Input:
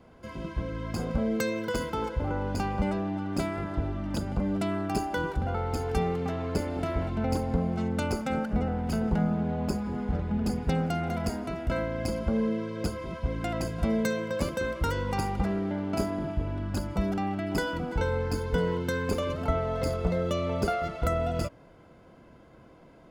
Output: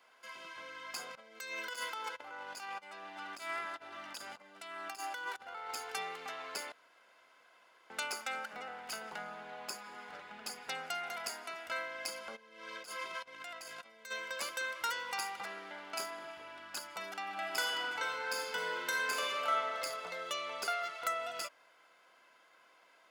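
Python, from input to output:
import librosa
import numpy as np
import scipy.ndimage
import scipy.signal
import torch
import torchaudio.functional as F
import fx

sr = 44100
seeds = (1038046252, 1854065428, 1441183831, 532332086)

y = fx.over_compress(x, sr, threshold_db=-32.0, ratio=-0.5, at=(1.15, 5.71))
y = fx.over_compress(y, sr, threshold_db=-37.0, ratio=-1.0, at=(12.35, 14.1), fade=0.02)
y = fx.reverb_throw(y, sr, start_s=17.21, length_s=2.39, rt60_s=1.8, drr_db=-1.0)
y = fx.edit(y, sr, fx.room_tone_fill(start_s=6.72, length_s=1.18), tone=tone)
y = scipy.signal.sosfilt(scipy.signal.butter(2, 1400.0, 'highpass', fs=sr, output='sos'), y)
y = y * 10.0 ** (1.5 / 20.0)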